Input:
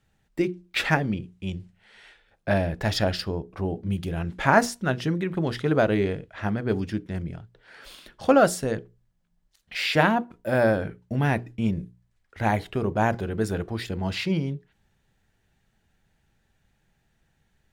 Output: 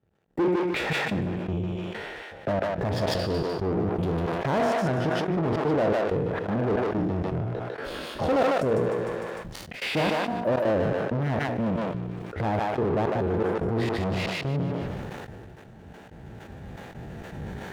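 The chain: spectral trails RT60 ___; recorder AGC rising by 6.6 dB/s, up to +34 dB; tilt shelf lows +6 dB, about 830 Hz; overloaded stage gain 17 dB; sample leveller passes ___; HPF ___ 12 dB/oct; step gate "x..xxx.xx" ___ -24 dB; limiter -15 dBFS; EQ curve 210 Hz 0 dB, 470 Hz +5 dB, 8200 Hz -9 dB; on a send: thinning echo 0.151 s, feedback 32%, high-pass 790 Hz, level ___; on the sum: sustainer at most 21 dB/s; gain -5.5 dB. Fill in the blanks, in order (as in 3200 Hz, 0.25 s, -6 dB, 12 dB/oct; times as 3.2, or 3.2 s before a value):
0.51 s, 2, 72 Hz, 162 bpm, -3 dB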